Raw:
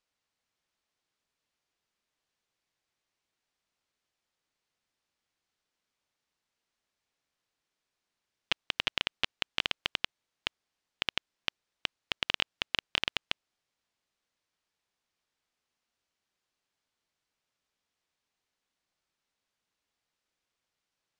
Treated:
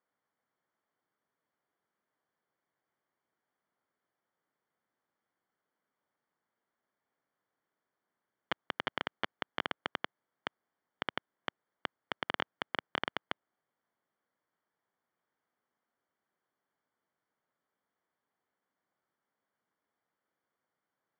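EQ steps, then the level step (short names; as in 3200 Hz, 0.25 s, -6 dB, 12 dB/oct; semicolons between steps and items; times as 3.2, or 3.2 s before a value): polynomial smoothing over 41 samples; HPF 150 Hz 12 dB/oct; +3.5 dB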